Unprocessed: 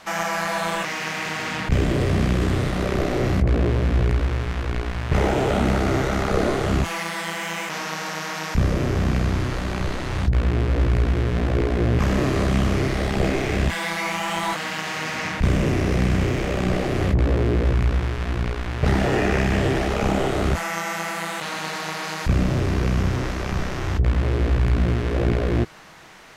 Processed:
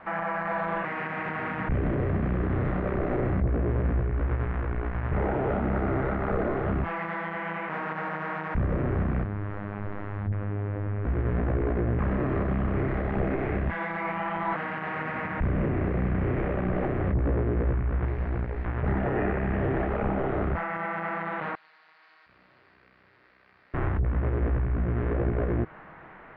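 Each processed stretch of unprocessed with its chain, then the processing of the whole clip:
9.24–11.05 robotiser 102 Hz + Doppler distortion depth 0.25 ms
18.05–18.65 minimum comb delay 0.46 ms + tone controls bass -2 dB, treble +11 dB
21.55–23.74 band-pass 4600 Hz, Q 6.6 + echo 0.473 s -7.5 dB
whole clip: limiter -18 dBFS; LPF 1900 Hz 24 dB/oct

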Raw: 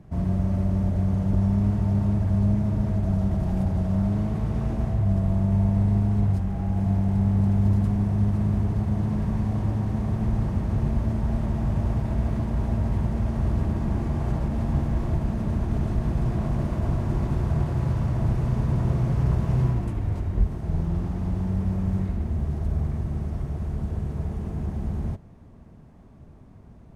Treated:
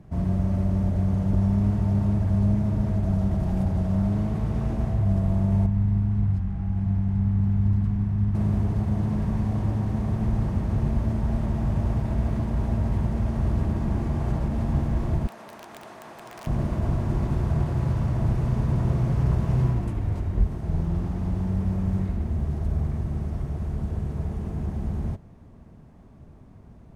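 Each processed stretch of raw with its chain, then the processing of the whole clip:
5.66–8.35 LPF 1800 Hz 6 dB/oct + bell 520 Hz -13.5 dB 1.5 oct
15.27–16.47 HPF 730 Hz + high shelf 2500 Hz -2 dB + wrapped overs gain 33.5 dB
whole clip: dry

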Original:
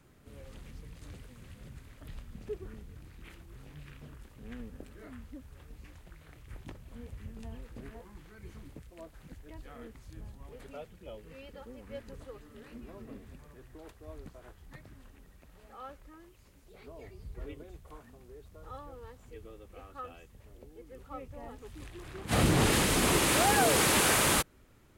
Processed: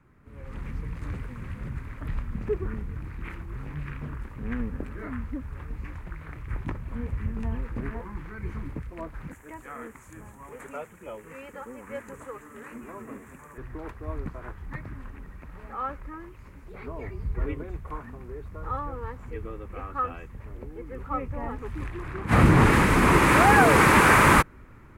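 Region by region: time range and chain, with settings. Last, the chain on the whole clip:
9.31–13.58 HPF 500 Hz 6 dB/oct + resonant high shelf 5900 Hz +8 dB, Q 3
whole clip: tilt shelf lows +8 dB, about 760 Hz; AGC gain up to 12.5 dB; band shelf 1500 Hz +12.5 dB; gain -6 dB

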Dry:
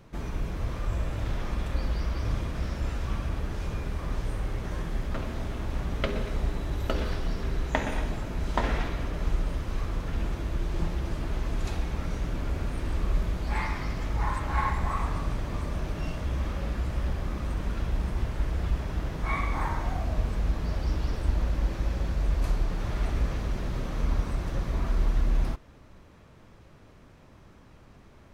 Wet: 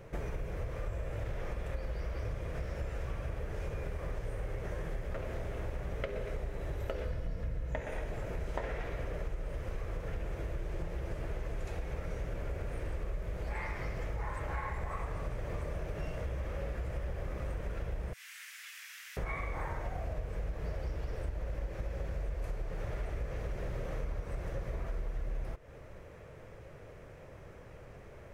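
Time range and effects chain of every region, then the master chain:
7.05–7.81 low shelf 260 Hz +10 dB + notch comb 390 Hz
18.13–19.17 Bessel high-pass 2600 Hz, order 6 + tilt +2 dB/oct
whole clip: graphic EQ 125/250/500/1000/2000/4000 Hz +3/-9/+11/-4/+5/-7 dB; compressor, threshold -35 dBFS; gain +1 dB

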